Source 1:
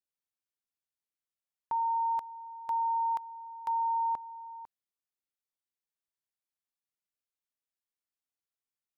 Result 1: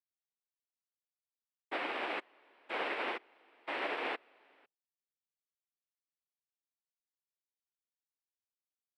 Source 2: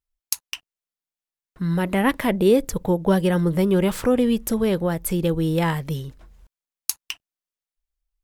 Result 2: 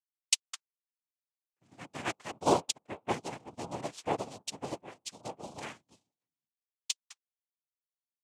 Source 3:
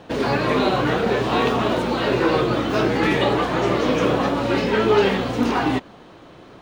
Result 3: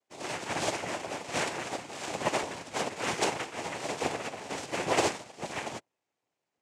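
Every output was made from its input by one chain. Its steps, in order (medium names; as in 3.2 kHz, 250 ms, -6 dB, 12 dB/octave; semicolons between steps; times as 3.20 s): ring modulator 67 Hz; tone controls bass -12 dB, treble +12 dB; hum notches 60/120/180/240/300/360/420/480/540/600 Hz; noise-vocoded speech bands 4; upward expansion 2.5:1, over -42 dBFS; trim -2 dB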